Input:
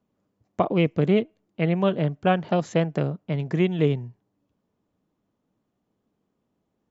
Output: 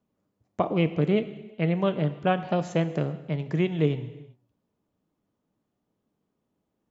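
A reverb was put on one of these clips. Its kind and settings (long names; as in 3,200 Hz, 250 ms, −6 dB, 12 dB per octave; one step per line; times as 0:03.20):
reverb whose tail is shaped and stops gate 420 ms falling, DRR 11 dB
level −3 dB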